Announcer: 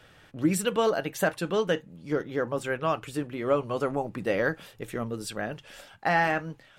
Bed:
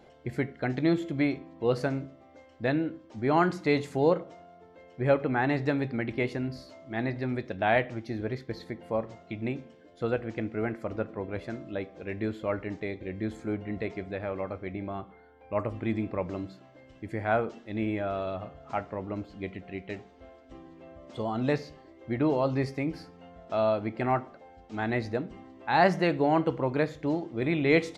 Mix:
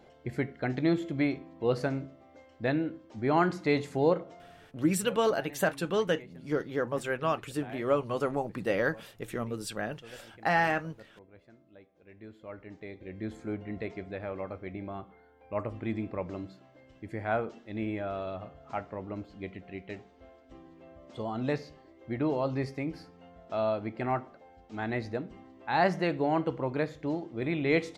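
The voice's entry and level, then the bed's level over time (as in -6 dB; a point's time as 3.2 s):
4.40 s, -2.0 dB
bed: 4.55 s -1.5 dB
4.88 s -21 dB
11.92 s -21 dB
13.32 s -3.5 dB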